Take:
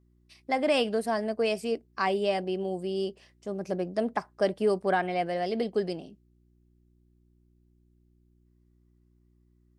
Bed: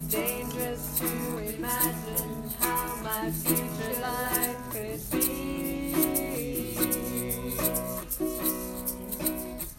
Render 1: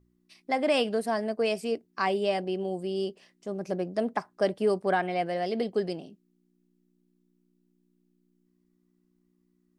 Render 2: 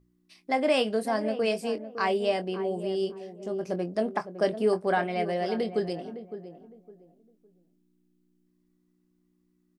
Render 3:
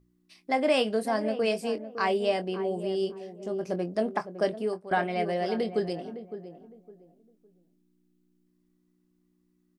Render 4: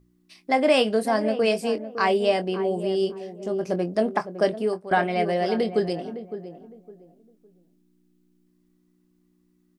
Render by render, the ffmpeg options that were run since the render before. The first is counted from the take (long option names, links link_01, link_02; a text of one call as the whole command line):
ffmpeg -i in.wav -af "bandreject=frequency=60:width_type=h:width=4,bandreject=frequency=120:width_type=h:width=4" out.wav
ffmpeg -i in.wav -filter_complex "[0:a]asplit=2[link_01][link_02];[link_02]adelay=23,volume=-10dB[link_03];[link_01][link_03]amix=inputs=2:normalize=0,asplit=2[link_04][link_05];[link_05]adelay=559,lowpass=frequency=920:poles=1,volume=-10.5dB,asplit=2[link_06][link_07];[link_07]adelay=559,lowpass=frequency=920:poles=1,volume=0.28,asplit=2[link_08][link_09];[link_09]adelay=559,lowpass=frequency=920:poles=1,volume=0.28[link_10];[link_04][link_06][link_08][link_10]amix=inputs=4:normalize=0" out.wav
ffmpeg -i in.wav -filter_complex "[0:a]asplit=2[link_01][link_02];[link_01]atrim=end=4.91,asetpts=PTS-STARTPTS,afade=type=out:start_time=4.36:duration=0.55:silence=0.141254[link_03];[link_02]atrim=start=4.91,asetpts=PTS-STARTPTS,afade=type=in:duration=0.004:curve=hsin:silence=0.141254[link_04];[link_03][link_04]concat=n=2:v=0:a=1" out.wav
ffmpeg -i in.wav -af "volume=5dB" out.wav